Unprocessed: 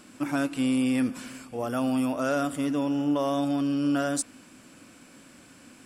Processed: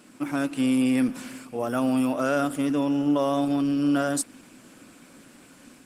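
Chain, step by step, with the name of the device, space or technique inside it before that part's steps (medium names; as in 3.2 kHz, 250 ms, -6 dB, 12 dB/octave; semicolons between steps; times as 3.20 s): video call (high-pass 120 Hz 24 dB/octave; level rider gain up to 3 dB; Opus 20 kbps 48 kHz)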